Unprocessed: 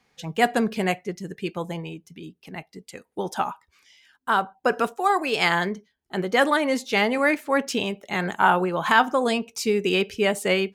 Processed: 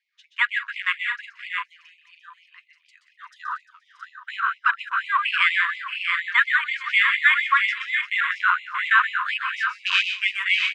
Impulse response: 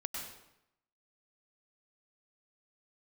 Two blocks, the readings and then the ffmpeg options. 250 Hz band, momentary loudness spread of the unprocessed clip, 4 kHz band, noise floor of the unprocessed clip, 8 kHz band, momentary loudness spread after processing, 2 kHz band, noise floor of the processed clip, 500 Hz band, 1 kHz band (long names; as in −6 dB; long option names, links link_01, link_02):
below −40 dB, 18 LU, +3.0 dB, −75 dBFS, below −10 dB, 14 LU, +6.5 dB, −64 dBFS, below −40 dB, −2.5 dB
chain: -filter_complex "[0:a]highpass=590,lowpass=3500,asplit=2[link_01][link_02];[link_02]aecho=0:1:348:0.211[link_03];[link_01][link_03]amix=inputs=2:normalize=0,afwtdn=0.0355,alimiter=limit=-11dB:level=0:latency=1:release=230,asplit=2[link_04][link_05];[link_05]aecho=0:1:126|140|180|631|671|708:0.398|0.211|0.158|0.266|0.501|0.188[link_06];[link_04][link_06]amix=inputs=2:normalize=0,afftfilt=real='re*gte(b*sr/1024,940*pow(2000/940,0.5+0.5*sin(2*PI*4.2*pts/sr)))':imag='im*gte(b*sr/1024,940*pow(2000/940,0.5+0.5*sin(2*PI*4.2*pts/sr)))':win_size=1024:overlap=0.75,volume=8dB"